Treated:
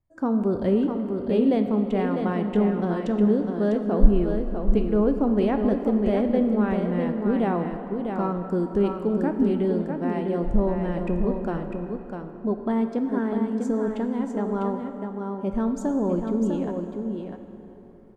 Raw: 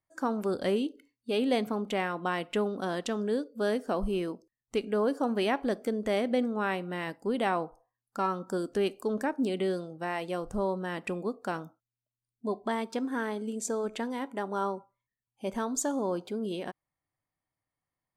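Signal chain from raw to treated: tilt EQ -4.5 dB/octave; reverse; upward compressor, threshold -40 dBFS; reverse; delay 650 ms -6 dB; plate-style reverb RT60 3.8 s, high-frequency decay 0.6×, DRR 7 dB; trim -1 dB

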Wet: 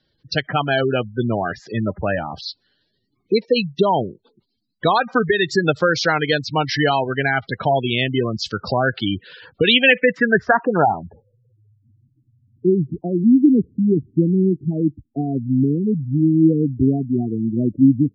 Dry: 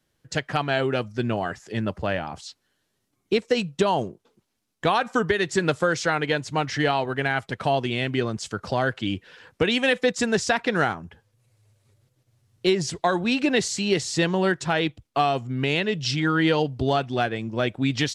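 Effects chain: low-pass sweep 4.5 kHz -> 270 Hz, 9.49–11.86 s; spectral gate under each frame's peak -15 dB strong; trim +5 dB

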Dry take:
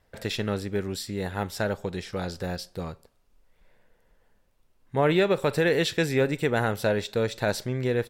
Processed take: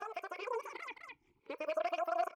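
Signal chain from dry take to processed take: reverse the whole clip; delay 720 ms -19.5 dB; peak limiter -17 dBFS, peak gain reduction 5 dB; compression 3:1, threshold -38 dBFS, peak gain reduction 12.5 dB; on a send at -7 dB: distance through air 380 m + reverberation RT60 0.45 s, pre-delay 25 ms; on the sum: reverb removal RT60 0.88 s; wide varispeed 3.44×; gain riding 2 s; talking filter a-u 0.49 Hz; trim +11 dB

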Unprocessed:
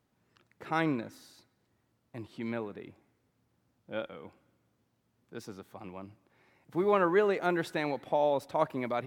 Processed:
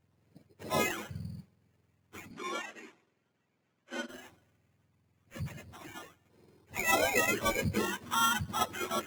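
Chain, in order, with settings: spectrum inverted on a logarithmic axis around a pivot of 900 Hz; bass shelf 350 Hz +8 dB; sample-rate reducer 4.6 kHz, jitter 0%; 2.31–4.09 s: band-pass 220–6500 Hz

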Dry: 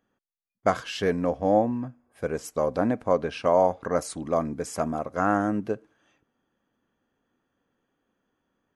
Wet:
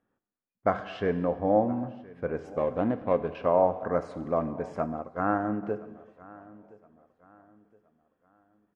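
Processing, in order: 2.56–3.35 s: median filter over 25 samples; low-pass 2 kHz 12 dB/octave; feedback delay 1019 ms, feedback 36%, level -22 dB; gated-style reverb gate 440 ms falling, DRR 10.5 dB; 4.86–5.63 s: upward expansion 1.5:1, over -38 dBFS; trim -2.5 dB

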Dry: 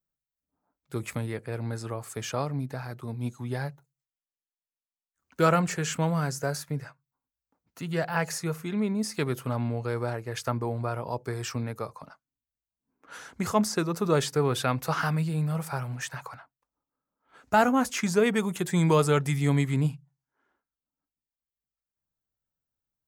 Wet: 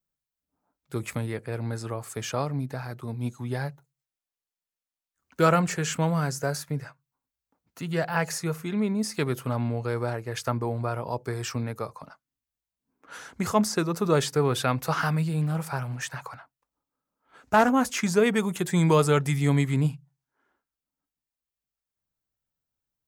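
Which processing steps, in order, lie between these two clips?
15.41–17.70 s: loudspeaker Doppler distortion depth 0.21 ms; trim +1.5 dB

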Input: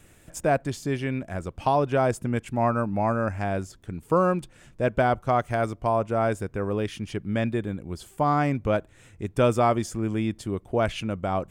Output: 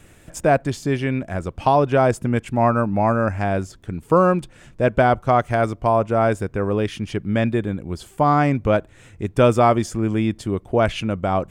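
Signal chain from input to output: treble shelf 7.5 kHz -5.5 dB; trim +6 dB

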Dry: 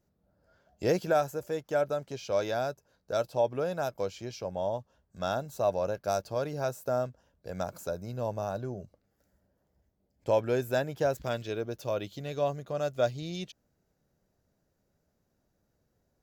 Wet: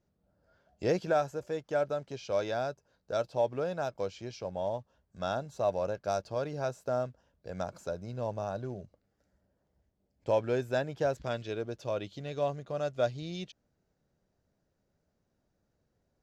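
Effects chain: in parallel at -11 dB: short-mantissa float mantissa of 2-bit; on the sum: low-pass 6.2 kHz 12 dB/octave; trim -4 dB

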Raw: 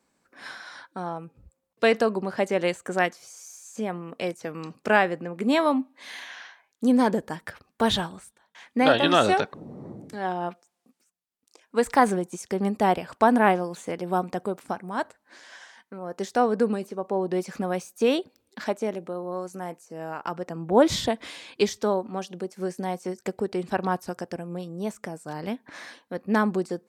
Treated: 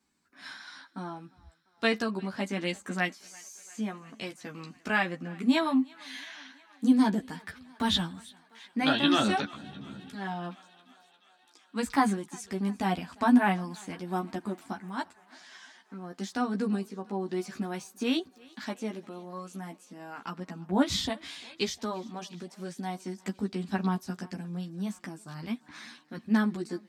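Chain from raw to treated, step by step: ten-band graphic EQ 250 Hz +6 dB, 500 Hz -12 dB, 4 kHz +4 dB; thinning echo 348 ms, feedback 73%, high-pass 320 Hz, level -23.5 dB; chorus voices 4, 0.13 Hz, delay 13 ms, depth 2.5 ms; trim -1.5 dB

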